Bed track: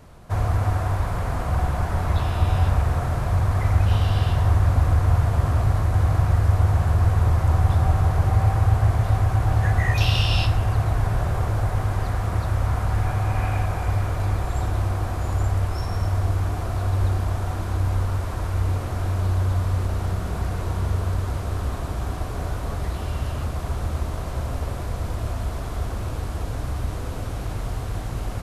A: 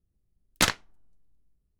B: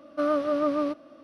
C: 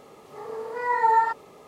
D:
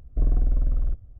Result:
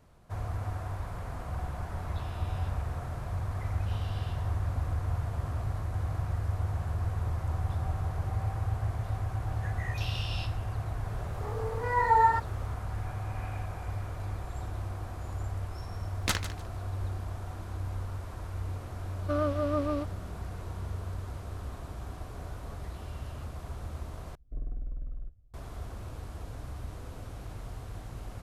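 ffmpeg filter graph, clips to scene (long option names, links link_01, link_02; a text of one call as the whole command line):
ffmpeg -i bed.wav -i cue0.wav -i cue1.wav -i cue2.wav -i cue3.wav -filter_complex "[0:a]volume=-13dB[link_01];[1:a]aecho=1:1:150|300|450:0.237|0.0498|0.0105[link_02];[4:a]flanger=delay=5.8:depth=2.7:regen=-76:speed=1.7:shape=sinusoidal[link_03];[link_01]asplit=2[link_04][link_05];[link_04]atrim=end=24.354[link_06];[link_03]atrim=end=1.19,asetpts=PTS-STARTPTS,volume=-11dB[link_07];[link_05]atrim=start=25.536[link_08];[3:a]atrim=end=1.67,asetpts=PTS-STARTPTS,volume=-2.5dB,afade=type=in:duration=0.004:curve=hsin,afade=type=out:start_time=1.666:duration=0.004:curve=hsin,adelay=11070[link_09];[link_02]atrim=end=1.79,asetpts=PTS-STARTPTS,volume=-7.5dB,afade=type=in:duration=0.004:curve=hsin,afade=type=out:start_time=1.786:duration=0.004:curve=hsin,adelay=15670[link_10];[2:a]atrim=end=1.23,asetpts=PTS-STARTPTS,volume=-5dB,afade=type=in:duration=0.004:curve=hsin,afade=type=out:start_time=1.226:duration=0.004:curve=hsin,adelay=19110[link_11];[link_06][link_07]acrossfade=duration=0.004:curve1=hsin:curve2=hsin[link_12];[link_12][link_08]acrossfade=duration=0.004:curve1=hsin:curve2=hsin[link_13];[link_13][link_09][link_10][link_11]amix=inputs=4:normalize=0" out.wav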